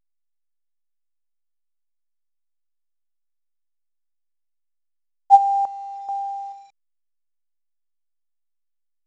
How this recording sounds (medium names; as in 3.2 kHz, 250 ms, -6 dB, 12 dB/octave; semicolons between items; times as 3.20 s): random-step tremolo 2.3 Hz, depth 80%; a quantiser's noise floor 10-bit, dither none; A-law